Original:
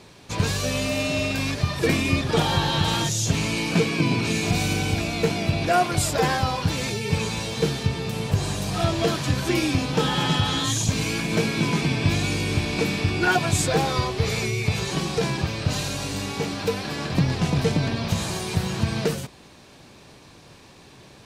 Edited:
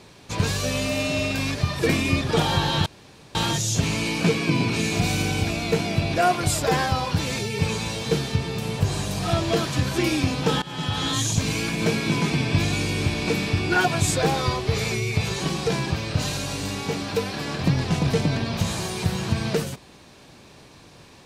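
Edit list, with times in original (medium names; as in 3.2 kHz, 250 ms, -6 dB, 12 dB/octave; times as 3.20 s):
2.86 s: insert room tone 0.49 s
10.13–10.61 s: fade in, from -20 dB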